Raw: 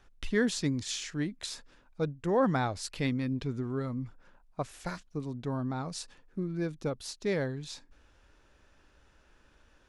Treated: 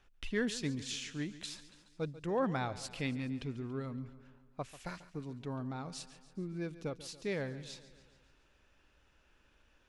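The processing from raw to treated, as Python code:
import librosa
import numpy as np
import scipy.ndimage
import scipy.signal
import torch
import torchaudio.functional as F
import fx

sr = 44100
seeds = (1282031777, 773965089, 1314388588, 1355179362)

p1 = fx.peak_eq(x, sr, hz=2700.0, db=6.0, octaves=0.64)
p2 = p1 + fx.echo_feedback(p1, sr, ms=141, feedback_pct=58, wet_db=-16, dry=0)
y = F.gain(torch.from_numpy(p2), -6.5).numpy()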